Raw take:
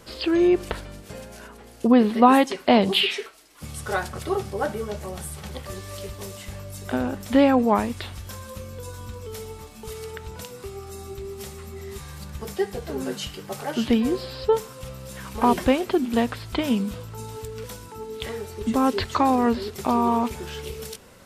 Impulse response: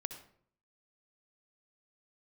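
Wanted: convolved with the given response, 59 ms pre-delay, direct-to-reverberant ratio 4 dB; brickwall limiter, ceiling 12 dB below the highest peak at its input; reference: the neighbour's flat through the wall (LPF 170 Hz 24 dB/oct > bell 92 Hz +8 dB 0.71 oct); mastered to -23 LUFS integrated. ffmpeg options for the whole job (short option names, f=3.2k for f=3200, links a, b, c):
-filter_complex "[0:a]alimiter=limit=-14dB:level=0:latency=1,asplit=2[a][b];[1:a]atrim=start_sample=2205,adelay=59[c];[b][c]afir=irnorm=-1:irlink=0,volume=-3dB[d];[a][d]amix=inputs=2:normalize=0,lowpass=f=170:w=0.5412,lowpass=f=170:w=1.3066,equalizer=f=92:t=o:w=0.71:g=8,volume=13dB"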